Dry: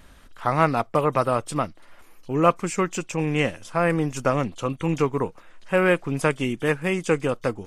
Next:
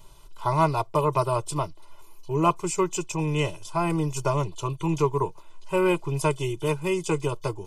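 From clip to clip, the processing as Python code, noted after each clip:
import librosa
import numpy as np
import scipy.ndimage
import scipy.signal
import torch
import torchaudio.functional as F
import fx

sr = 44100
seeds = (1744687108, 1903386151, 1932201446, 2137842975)

y = fx.fixed_phaser(x, sr, hz=340.0, stages=8)
y = y + 0.88 * np.pad(y, (int(2.0 * sr / 1000.0), 0))[:len(y)]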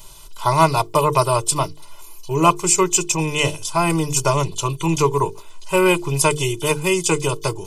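y = fx.high_shelf(x, sr, hz=2700.0, db=11.0)
y = fx.hum_notches(y, sr, base_hz=50, count=9)
y = F.gain(torch.from_numpy(y), 6.0).numpy()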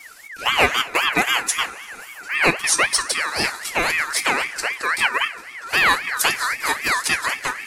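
y = fx.rev_double_slope(x, sr, seeds[0], early_s=0.28, late_s=4.9, knee_db=-20, drr_db=8.5)
y = fx.ring_lfo(y, sr, carrier_hz=1800.0, swing_pct=25, hz=3.8)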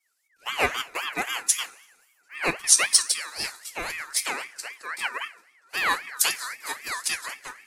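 y = fx.bass_treble(x, sr, bass_db=-5, treble_db=6)
y = fx.band_widen(y, sr, depth_pct=100)
y = F.gain(torch.from_numpy(y), -11.0).numpy()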